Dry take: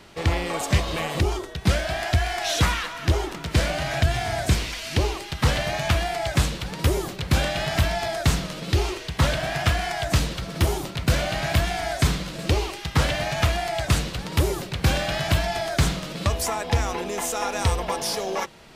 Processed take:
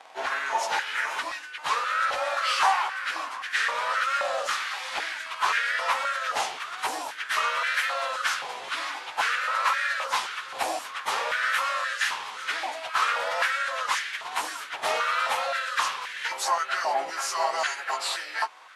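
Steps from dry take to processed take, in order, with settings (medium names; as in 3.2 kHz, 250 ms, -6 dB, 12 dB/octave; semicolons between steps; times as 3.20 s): frequency-domain pitch shifter -4 st; step-sequenced high-pass 3.8 Hz 770–1700 Hz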